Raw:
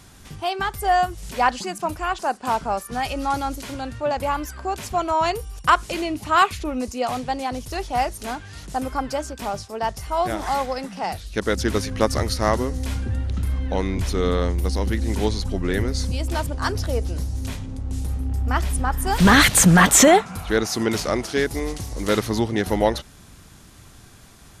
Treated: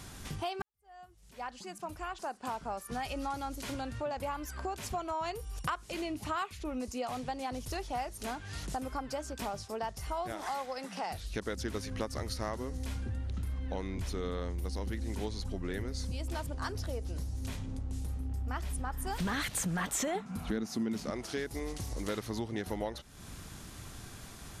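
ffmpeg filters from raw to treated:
-filter_complex "[0:a]asettb=1/sr,asplit=3[s0][s1][s2];[s0]atrim=end=10.324[s3];[s1]atrim=start=10.32:end=11.11,asetpts=PTS-STARTPTS,afade=t=in:d=0.004:c=qsin,afade=t=out:st=0.786:d=0.004:c=qsin,highpass=f=380:p=1[s4];[s2]atrim=start=11.106[s5];[s3][s4]acrossfade=d=0.004:c1=hsin:c2=qsin[s6];[s6][s5]acrossfade=d=0.004:c1=qsin:c2=hsin,asettb=1/sr,asplit=3[s7][s8][s9];[s7]atrim=end=20.154[s10];[s8]atrim=start=20.15:end=21.11,asetpts=PTS-STARTPTS,afade=t=in:d=0.004:c=qsin,afade=t=out:st=0.956:d=0.004:c=qsin,equalizer=f=220:t=o:w=0.93:g=14.5[s11];[s9]atrim=start=21.106[s12];[s10][s11]acrossfade=d=0.004:c1=hsin:c2=qsin[s13];[s13][s12]acrossfade=d=0.004:c1=qsin:c2=hsin,asplit=2[s14][s15];[s14]atrim=end=0.62,asetpts=PTS-STARTPTS,afade=t=out:st=0.616:d=0.004:c=hsin[s16];[s15]atrim=start=0.62,asetpts=PTS-STARTPTS,afade=t=in:d=2.56:c=qua[s17];[s16][s17]concat=n=2:v=0:a=1,acompressor=threshold=0.0158:ratio=4"

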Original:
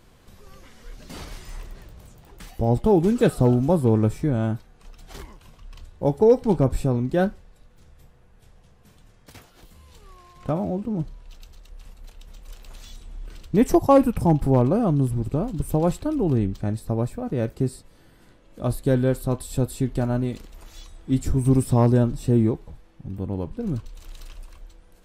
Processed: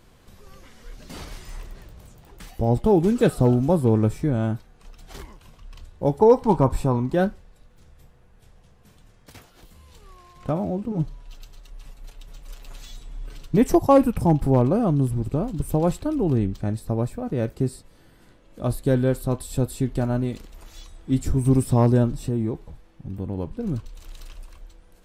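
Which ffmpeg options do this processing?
-filter_complex "[0:a]asettb=1/sr,asplit=3[s0][s1][s2];[s0]atrim=end=6.194[s3];[s1]atrim=start=6.19:end=7.15,asetpts=PTS-STARTPTS,afade=t=in:d=0.004:c=qsin,afade=t=out:st=0.956:d=0.004:c=qsin,equalizer=f=970:t=o:w=0.46:g=14[s4];[s2]atrim=start=7.146[s5];[s3][s4]acrossfade=d=0.004:c1=hsin:c2=qsin[s6];[s6][s5]acrossfade=d=0.004:c1=qsin:c2=hsin,asettb=1/sr,asplit=3[s7][s8][s9];[s7]atrim=end=10.914[s10];[s8]atrim=start=10.91:end=13.58,asetpts=PTS-STARTPTS,afade=t=in:d=0.004:c=qsin,afade=t=out:st=2.666:d=0.004:c=qsin,aecho=1:1:7.1:0.65,atrim=end_sample=117747[s11];[s9]atrim=start=13.576[s12];[s10][s11]acrossfade=d=0.004:c1=hsin:c2=qsin[s13];[s13][s12]acrossfade=d=0.004:c1=qsin:c2=hsin,asettb=1/sr,asplit=3[s14][s15][s16];[s14]atrim=end=22.174[s17];[s15]atrim=start=22.17:end=23.38,asetpts=PTS-STARTPTS,afade=t=in:d=0.004:c=qsin,afade=t=out:st=1.206:d=0.004:c=qsin,acompressor=threshold=0.0794:ratio=2.5:attack=3.2:release=140:knee=1:detection=peak[s18];[s16]atrim=start=23.376[s19];[s17][s18]acrossfade=d=0.004:c1=hsin:c2=qsin[s20];[s20][s19]acrossfade=d=0.004:c1=qsin:c2=hsin"

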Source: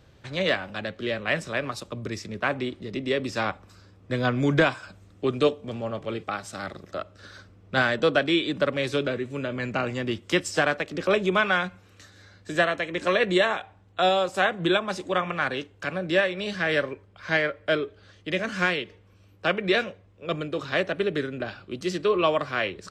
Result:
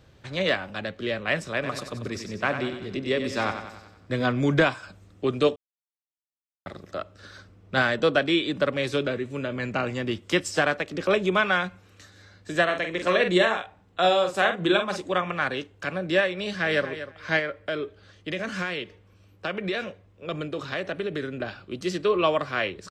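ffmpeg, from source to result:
-filter_complex "[0:a]asplit=3[s0][s1][s2];[s0]afade=t=out:st=1.62:d=0.02[s3];[s1]aecho=1:1:93|186|279|372|465|558:0.376|0.195|0.102|0.0528|0.0275|0.0143,afade=t=in:st=1.62:d=0.02,afade=t=out:st=4.31:d=0.02[s4];[s2]afade=t=in:st=4.31:d=0.02[s5];[s3][s4][s5]amix=inputs=3:normalize=0,asettb=1/sr,asplit=3[s6][s7][s8];[s6]atrim=end=12.644[s9];[s7]atrim=start=12.64:end=15,asetpts=PTS-STARTPTS,afade=t=in:d=0.004:c=qsin,afade=t=out:st=2.356:d=0.004:c=qsin,asplit=2[s10][s11];[s11]adelay=45,volume=0.447[s12];[s10][s12]amix=inputs=2:normalize=0,atrim=end_sample=104076[s13];[s8]atrim=start=14.996[s14];[s9][s13]acrossfade=d=0.004:c1=hsin:c2=qsin[s15];[s15][s14]acrossfade=d=0.004:c1=qsin:c2=hsin,asplit=2[s16][s17];[s17]afade=t=in:st=16.39:d=0.01,afade=t=out:st=16.87:d=0.01,aecho=0:1:240|480:0.251189|0.0376783[s18];[s16][s18]amix=inputs=2:normalize=0,asettb=1/sr,asplit=3[s19][s20][s21];[s19]atrim=end=17.394[s22];[s20]atrim=start=17.39:end=21.28,asetpts=PTS-STARTPTS,afade=t=in:d=0.004:c=qsin,afade=t=out:st=3.886:d=0.004:c=qsin,acompressor=threshold=0.0562:ratio=4:attack=3.2:release=140:knee=1:detection=peak[s23];[s21]atrim=start=21.276[s24];[s22][s23]acrossfade=d=0.004:c1=hsin:c2=qsin[s25];[s25][s24]acrossfade=d=0.004:c1=qsin:c2=hsin,asplit=3[s26][s27][s28];[s26]atrim=end=5.56,asetpts=PTS-STARTPTS,afade=t=out:st=5.556:d=0.004:c=hsin[s29];[s27]atrim=start=5.56:end=6.66,asetpts=PTS-STARTPTS,volume=0[s30];[s28]atrim=start=6.66,asetpts=PTS-STARTPTS,afade=t=in:d=0.004:c=hsin[s31];[s29][s30][s31]concat=n=3:v=0:a=1"

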